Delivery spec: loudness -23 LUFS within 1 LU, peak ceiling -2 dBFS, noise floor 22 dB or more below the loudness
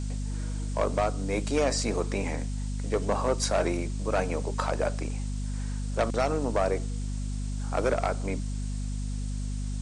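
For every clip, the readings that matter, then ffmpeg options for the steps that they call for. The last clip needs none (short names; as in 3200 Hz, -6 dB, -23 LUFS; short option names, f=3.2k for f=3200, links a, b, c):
hum 50 Hz; harmonics up to 250 Hz; hum level -29 dBFS; noise floor -32 dBFS; noise floor target -52 dBFS; loudness -30.0 LUFS; peak -13.5 dBFS; loudness target -23.0 LUFS
-> -af "bandreject=f=50:t=h:w=4,bandreject=f=100:t=h:w=4,bandreject=f=150:t=h:w=4,bandreject=f=200:t=h:w=4,bandreject=f=250:t=h:w=4"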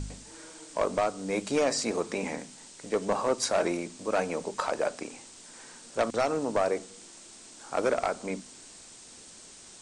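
hum none; noise floor -50 dBFS; noise floor target -52 dBFS
-> -af "afftdn=nr=6:nf=-50"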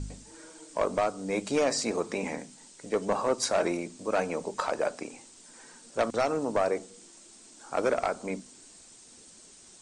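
noise floor -53 dBFS; loudness -30.0 LUFS; peak -15.0 dBFS; loudness target -23.0 LUFS
-> -af "volume=7dB"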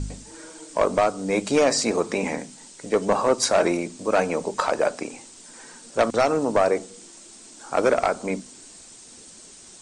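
loudness -23.0 LUFS; peak -8.0 dBFS; noise floor -46 dBFS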